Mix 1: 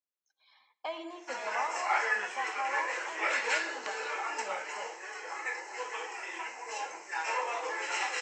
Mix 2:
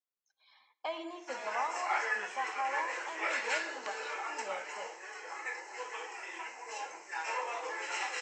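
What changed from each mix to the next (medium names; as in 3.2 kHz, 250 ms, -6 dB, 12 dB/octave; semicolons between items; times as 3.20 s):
background -3.5 dB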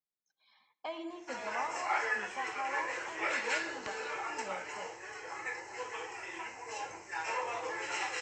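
speech -3.5 dB; master: remove high-pass 420 Hz 12 dB/octave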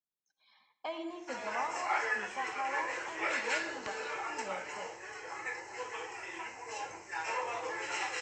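speech: send +8.5 dB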